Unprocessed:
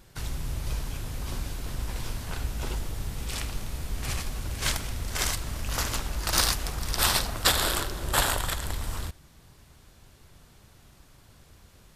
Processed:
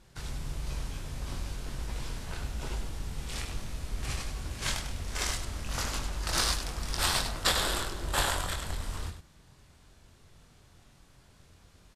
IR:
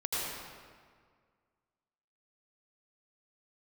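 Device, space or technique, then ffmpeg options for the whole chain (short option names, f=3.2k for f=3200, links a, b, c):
slapback doubling: -filter_complex "[0:a]lowpass=10k,asplit=3[a][b][c];[b]adelay=23,volume=-5dB[d];[c]adelay=99,volume=-8dB[e];[a][d][e]amix=inputs=3:normalize=0,volume=-5dB"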